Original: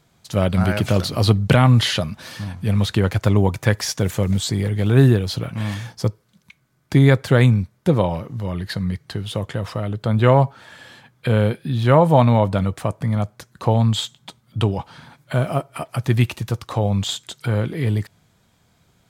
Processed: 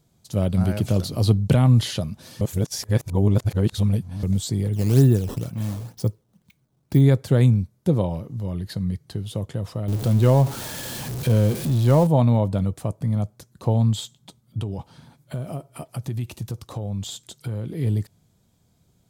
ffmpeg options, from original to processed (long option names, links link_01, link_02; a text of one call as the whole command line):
ffmpeg -i in.wav -filter_complex "[0:a]asettb=1/sr,asplit=3[link_01][link_02][link_03];[link_01]atrim=end=4.734[link_04];[link_02]atrim=start=4.73:end=7.01,asetpts=PTS-STARTPTS,afade=type=in:duration=0.004:curve=qsin,afade=type=out:start_time=2.276:duration=0.004:curve=qsin,acrusher=samples=11:mix=1:aa=0.000001:lfo=1:lforange=17.6:lforate=2.1[link_05];[link_03]atrim=start=7.006[link_06];[link_04][link_05]acrossfade=duration=0.004:curve1=hsin:curve2=qsin[link_07];[link_07][link_06]acrossfade=duration=0.004:curve1=qsin:curve2=hsin,asettb=1/sr,asplit=3[link_08][link_09][link_10];[link_08]atrim=end=9.884[link_11];[link_09]atrim=start=9.88:end=12.07,asetpts=PTS-STARTPTS,afade=type=in:duration=0.004:curve=qsin,afade=type=out:start_time=2.186:duration=0.004:curve=qsin,aeval=exprs='val(0)+0.5*0.0944*sgn(val(0))':channel_layout=same[link_12];[link_10]atrim=start=12.066[link_13];[link_11][link_12]acrossfade=duration=0.004:curve1=hsin:curve2=qsin[link_14];[link_14][link_13]acrossfade=duration=0.004:curve1=qsin:curve2=hsin,asettb=1/sr,asplit=3[link_15][link_16][link_17];[link_15]atrim=end=14.594[link_18];[link_16]atrim=start=14.59:end=17.72,asetpts=PTS-STARTPTS,afade=type=in:duration=0.004:curve=qsin,afade=type=out:start_time=3.126:duration=0.004:curve=qsin,acompressor=threshold=-22dB:ratio=4:attack=3.2:release=140:knee=1:detection=peak[link_19];[link_17]atrim=start=17.716[link_20];[link_18][link_19]acrossfade=duration=0.004:curve1=hsin:curve2=qsin[link_21];[link_21][link_20]acrossfade=duration=0.004:curve1=qsin:curve2=hsin,asplit=3[link_22][link_23][link_24];[link_22]atrim=end=2.412[link_25];[link_23]atrim=start=2.408:end=4.232,asetpts=PTS-STARTPTS,areverse[link_26];[link_24]atrim=start=4.228[link_27];[link_25][link_26]acrossfade=duration=0.004:curve1=hsin:curve2=hsin[link_28];[link_28][link_27]acrossfade=duration=0.004:curve1=hsin:curve2=hsin,equalizer=frequency=1700:width_type=o:width=2.5:gain=-12.5,volume=-1.5dB" out.wav